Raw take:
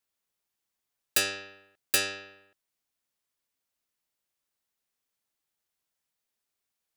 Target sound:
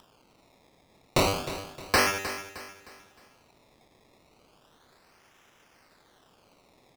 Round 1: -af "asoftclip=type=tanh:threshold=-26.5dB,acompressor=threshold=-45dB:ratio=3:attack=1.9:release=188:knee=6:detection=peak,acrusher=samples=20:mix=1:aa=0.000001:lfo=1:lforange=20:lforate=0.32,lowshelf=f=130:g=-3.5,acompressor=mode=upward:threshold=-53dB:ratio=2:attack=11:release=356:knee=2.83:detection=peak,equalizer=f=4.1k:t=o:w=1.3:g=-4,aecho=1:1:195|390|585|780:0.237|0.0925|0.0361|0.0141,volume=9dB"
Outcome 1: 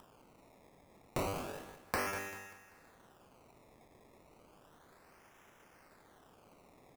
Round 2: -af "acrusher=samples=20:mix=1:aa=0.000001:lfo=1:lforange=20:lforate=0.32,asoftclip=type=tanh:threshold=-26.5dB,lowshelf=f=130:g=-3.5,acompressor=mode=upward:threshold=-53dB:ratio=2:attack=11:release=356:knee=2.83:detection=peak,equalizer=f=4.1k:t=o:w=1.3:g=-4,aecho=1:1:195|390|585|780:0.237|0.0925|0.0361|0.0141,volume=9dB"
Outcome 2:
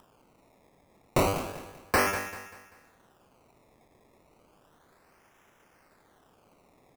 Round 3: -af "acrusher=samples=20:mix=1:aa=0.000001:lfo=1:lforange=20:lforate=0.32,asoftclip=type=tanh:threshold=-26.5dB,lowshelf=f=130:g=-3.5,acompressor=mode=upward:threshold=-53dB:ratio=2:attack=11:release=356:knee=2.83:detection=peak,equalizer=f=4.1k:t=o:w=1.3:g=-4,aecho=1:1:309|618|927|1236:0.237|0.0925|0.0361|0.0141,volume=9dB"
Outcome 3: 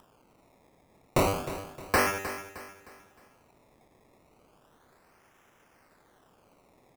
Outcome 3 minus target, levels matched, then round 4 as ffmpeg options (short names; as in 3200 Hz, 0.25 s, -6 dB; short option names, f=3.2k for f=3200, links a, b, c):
4000 Hz band -6.5 dB
-af "acrusher=samples=20:mix=1:aa=0.000001:lfo=1:lforange=20:lforate=0.32,asoftclip=type=tanh:threshold=-26.5dB,lowshelf=f=130:g=-3.5,acompressor=mode=upward:threshold=-53dB:ratio=2:attack=11:release=356:knee=2.83:detection=peak,equalizer=f=4.1k:t=o:w=1.3:g=6,aecho=1:1:309|618|927|1236:0.237|0.0925|0.0361|0.0141,volume=9dB"